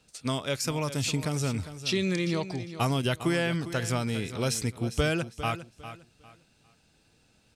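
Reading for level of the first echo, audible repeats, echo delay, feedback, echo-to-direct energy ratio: −12.5 dB, 2, 403 ms, 26%, −12.0 dB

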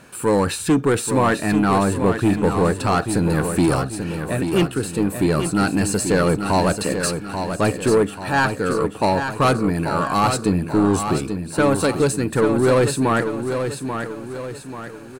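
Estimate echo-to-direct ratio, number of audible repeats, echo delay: −6.5 dB, 4, 837 ms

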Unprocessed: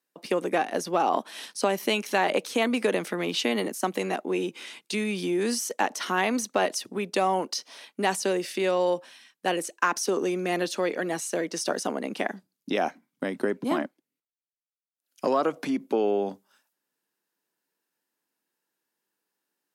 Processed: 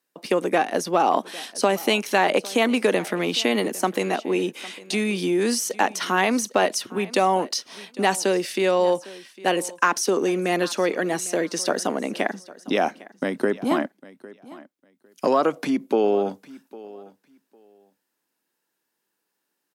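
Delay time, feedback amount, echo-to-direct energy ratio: 804 ms, 18%, −20.0 dB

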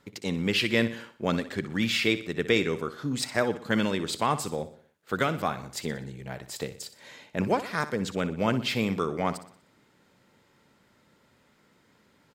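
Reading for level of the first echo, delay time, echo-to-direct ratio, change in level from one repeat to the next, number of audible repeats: −13.5 dB, 61 ms, −12.5 dB, −6.5 dB, 4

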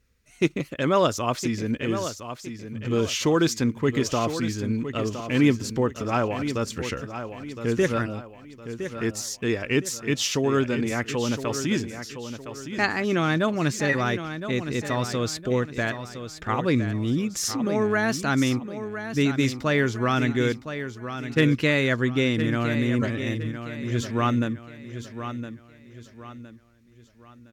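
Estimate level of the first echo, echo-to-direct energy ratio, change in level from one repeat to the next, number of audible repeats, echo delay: −10.0 dB, −9.5 dB, −8.5 dB, 3, 1,013 ms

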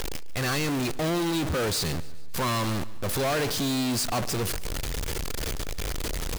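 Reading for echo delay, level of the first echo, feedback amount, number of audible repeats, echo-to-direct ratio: 144 ms, −19.5 dB, 49%, 3, −18.5 dB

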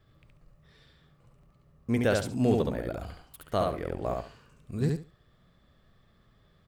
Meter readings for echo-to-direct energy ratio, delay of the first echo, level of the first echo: −3.0 dB, 70 ms, −3.0 dB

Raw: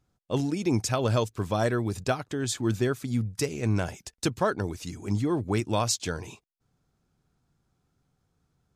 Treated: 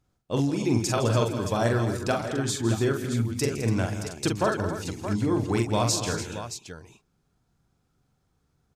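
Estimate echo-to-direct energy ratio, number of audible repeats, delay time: −2.0 dB, 5, 43 ms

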